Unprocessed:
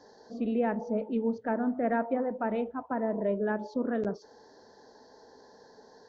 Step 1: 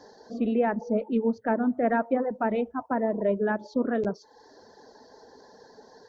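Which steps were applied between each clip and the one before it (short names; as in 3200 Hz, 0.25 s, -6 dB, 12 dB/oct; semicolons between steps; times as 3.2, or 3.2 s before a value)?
reverb removal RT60 0.65 s; gain +5 dB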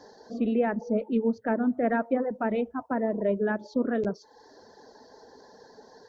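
dynamic EQ 900 Hz, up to -4 dB, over -39 dBFS, Q 1.6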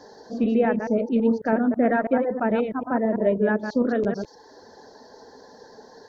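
reverse delay 0.109 s, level -6 dB; gain +4 dB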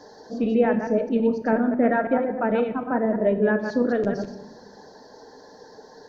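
shoebox room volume 560 m³, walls mixed, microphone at 0.5 m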